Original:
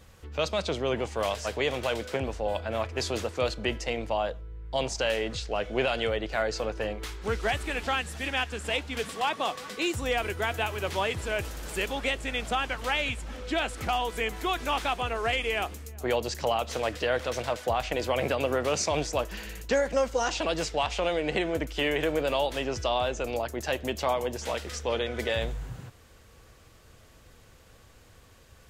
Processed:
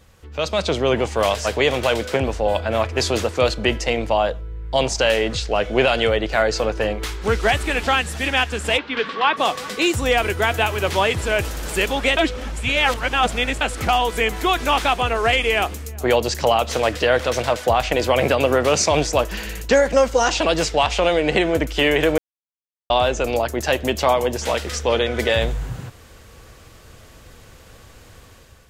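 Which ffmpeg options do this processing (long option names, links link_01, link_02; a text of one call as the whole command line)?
ffmpeg -i in.wav -filter_complex "[0:a]asplit=3[link_01][link_02][link_03];[link_01]afade=type=out:start_time=8.77:duration=0.02[link_04];[link_02]highpass=frequency=130:width=0.5412,highpass=frequency=130:width=1.3066,equalizer=frequency=140:width_type=q:width=4:gain=-10,equalizer=frequency=200:width_type=q:width=4:gain=-4,equalizer=frequency=700:width_type=q:width=4:gain=-7,equalizer=frequency=1100:width_type=q:width=4:gain=5,equalizer=frequency=1600:width_type=q:width=4:gain=4,lowpass=frequency=4000:width=0.5412,lowpass=frequency=4000:width=1.3066,afade=type=in:start_time=8.77:duration=0.02,afade=type=out:start_time=9.36:duration=0.02[link_05];[link_03]afade=type=in:start_time=9.36:duration=0.02[link_06];[link_04][link_05][link_06]amix=inputs=3:normalize=0,asplit=5[link_07][link_08][link_09][link_10][link_11];[link_07]atrim=end=12.172[link_12];[link_08]atrim=start=12.168:end=13.612,asetpts=PTS-STARTPTS,areverse[link_13];[link_09]atrim=start=13.608:end=22.18,asetpts=PTS-STARTPTS,afade=type=out:start_time=8.568:duration=0.004:curve=hsin[link_14];[link_10]atrim=start=22.18:end=22.9,asetpts=PTS-STARTPTS,volume=0[link_15];[link_11]atrim=start=22.9,asetpts=PTS-STARTPTS,afade=type=in:duration=0.004:curve=hsin[link_16];[link_12][link_13]acrossfade=duration=0.004:curve1=hsin:curve2=hsin[link_17];[link_14][link_15][link_16]concat=n=3:v=0:a=1[link_18];[link_17][link_18]acrossfade=duration=0.004:curve1=hsin:curve2=hsin,dynaudnorm=framelen=200:gausssize=5:maxgain=8.5dB,volume=1.5dB" out.wav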